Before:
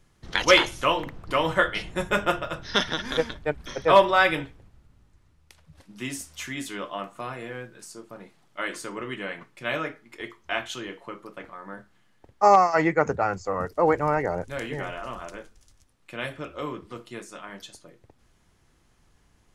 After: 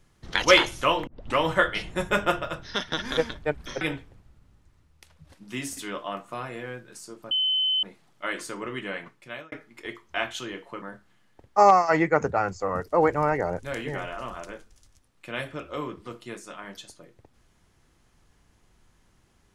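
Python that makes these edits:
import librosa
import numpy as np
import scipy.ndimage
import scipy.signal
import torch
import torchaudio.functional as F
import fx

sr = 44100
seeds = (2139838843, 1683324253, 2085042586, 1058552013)

y = fx.edit(x, sr, fx.tape_start(start_s=1.07, length_s=0.29),
    fx.fade_out_to(start_s=2.48, length_s=0.44, floor_db=-12.0),
    fx.cut(start_s=3.81, length_s=0.48),
    fx.cut(start_s=6.25, length_s=0.39),
    fx.insert_tone(at_s=8.18, length_s=0.52, hz=3050.0, db=-21.0),
    fx.fade_out_span(start_s=9.36, length_s=0.51),
    fx.cut(start_s=11.17, length_s=0.5), tone=tone)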